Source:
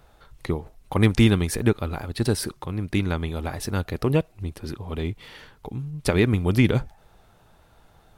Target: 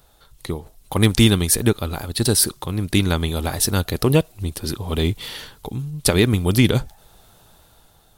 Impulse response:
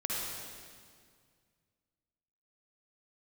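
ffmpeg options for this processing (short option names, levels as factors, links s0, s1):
-af "dynaudnorm=f=210:g=7:m=4.47,aexciter=amount=3.5:drive=2.3:freq=3200,volume=0.794"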